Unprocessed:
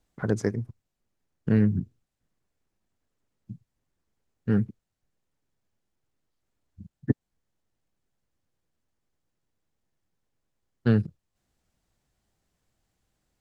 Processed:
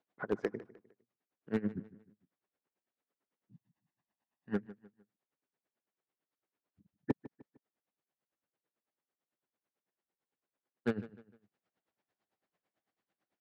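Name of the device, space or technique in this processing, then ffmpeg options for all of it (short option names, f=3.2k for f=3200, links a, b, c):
helicopter radio: -filter_complex "[0:a]asettb=1/sr,asplit=3[a][b][c];[a]atrim=end=3.514[d];[b]atrim=start=3.51:end=4.54,asetpts=PTS-STARTPTS,afade=t=in:d=0.004:c=qsin,afade=t=out:st=1.026:d=0.004:c=qsin,aecho=1:1:1.1:0.71,atrim=end_sample=45423[e];[c]atrim=start=4.536[f];[d][e]acrossfade=d=0.004:c1=hsin:c2=qsin[g];[g][f]acrossfade=d=0.004:c1=qsin:c2=hsin,highpass=310,lowpass=2.8k,aeval=exprs='val(0)*pow(10,-21*(0.5-0.5*cos(2*PI*9*n/s))/20)':c=same,asoftclip=type=hard:threshold=-23dB,asplit=2[h][i];[i]adelay=152,lowpass=f=5k:p=1,volume=-17dB,asplit=2[j][k];[k]adelay=152,lowpass=f=5k:p=1,volume=0.38,asplit=2[l][m];[m]adelay=152,lowpass=f=5k:p=1,volume=0.38[n];[h][j][l][n]amix=inputs=4:normalize=0"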